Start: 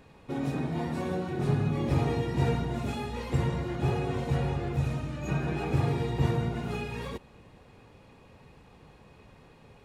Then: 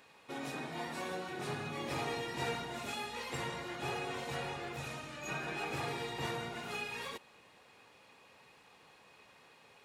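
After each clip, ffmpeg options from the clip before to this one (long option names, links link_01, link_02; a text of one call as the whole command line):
ffmpeg -i in.wav -af "highpass=frequency=1500:poles=1,volume=2.5dB" out.wav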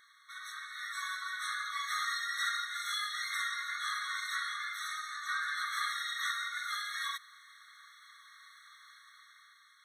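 ffmpeg -i in.wav -af "dynaudnorm=framelen=170:gausssize=11:maxgain=6.5dB,afftfilt=real='re*eq(mod(floor(b*sr/1024/1100),2),1)':imag='im*eq(mod(floor(b*sr/1024/1100),2),1)':win_size=1024:overlap=0.75,volume=3.5dB" out.wav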